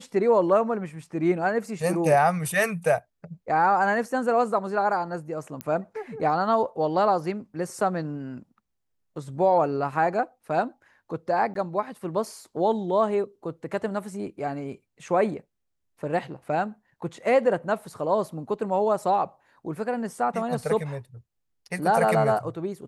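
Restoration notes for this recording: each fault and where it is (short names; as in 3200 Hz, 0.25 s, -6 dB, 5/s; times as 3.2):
5.61 pop -16 dBFS
11.54–11.55 gap 13 ms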